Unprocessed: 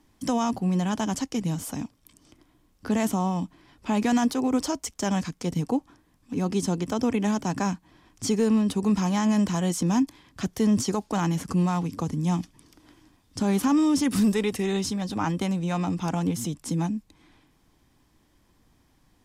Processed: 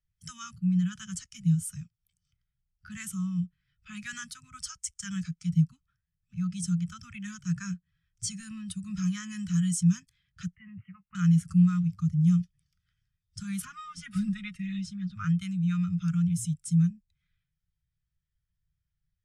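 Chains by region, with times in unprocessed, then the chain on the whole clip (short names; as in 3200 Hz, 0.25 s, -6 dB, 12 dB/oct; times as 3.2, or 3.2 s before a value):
10.55–11.15 rippled Chebyshev low-pass 2900 Hz, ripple 6 dB + low shelf 320 Hz -2.5 dB + doubler 21 ms -14 dB
13.65–15.15 G.711 law mismatch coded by A + LPF 2400 Hz 6 dB/oct + comb 4.8 ms, depth 70%
whole clip: dynamic EQ 9100 Hz, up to +8 dB, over -53 dBFS, Q 1.7; Chebyshev band-stop 170–1300 Hz, order 4; spectral expander 1.5:1; gain +4 dB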